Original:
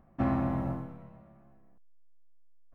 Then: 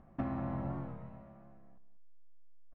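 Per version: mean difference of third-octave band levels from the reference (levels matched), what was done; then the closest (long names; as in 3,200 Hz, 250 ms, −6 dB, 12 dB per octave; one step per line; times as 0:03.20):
4.0 dB: downward compressor 12 to 1, threshold −35 dBFS, peak gain reduction 12 dB
high-frequency loss of the air 110 metres
slap from a distant wall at 33 metres, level −14 dB
wow of a warped record 45 rpm, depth 100 cents
level +2 dB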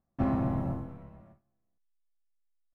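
2.5 dB: sub-octave generator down 1 octave, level −5 dB
noise gate with hold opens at −47 dBFS
dynamic equaliser 1,900 Hz, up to −4 dB, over −52 dBFS, Q 0.86
downsampling to 32,000 Hz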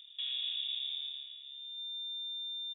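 19.0 dB: low-shelf EQ 450 Hz +12 dB
brickwall limiter −27.5 dBFS, peak gain reduction 18 dB
on a send: repeating echo 159 ms, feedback 37%, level −10 dB
on the sum: voice inversion scrambler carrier 3,600 Hz
level −5 dB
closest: second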